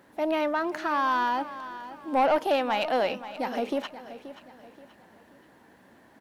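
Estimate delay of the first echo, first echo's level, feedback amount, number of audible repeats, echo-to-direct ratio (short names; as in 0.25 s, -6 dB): 0.529 s, -14.0 dB, 38%, 3, -13.5 dB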